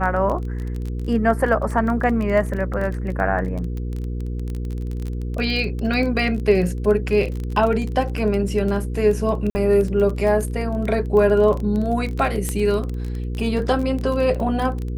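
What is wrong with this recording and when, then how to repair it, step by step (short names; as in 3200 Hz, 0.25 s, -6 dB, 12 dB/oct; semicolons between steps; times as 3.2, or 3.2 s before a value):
crackle 20/s -25 dBFS
hum 60 Hz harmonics 8 -26 dBFS
9.5–9.55 gap 50 ms
12.49 pop -10 dBFS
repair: de-click; de-hum 60 Hz, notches 8; interpolate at 9.5, 50 ms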